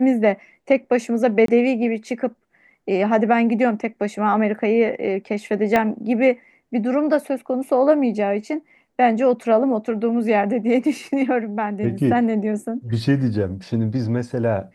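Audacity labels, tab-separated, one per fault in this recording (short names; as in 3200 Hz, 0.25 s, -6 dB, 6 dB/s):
1.460000	1.480000	gap 23 ms
5.760000	5.760000	pop -7 dBFS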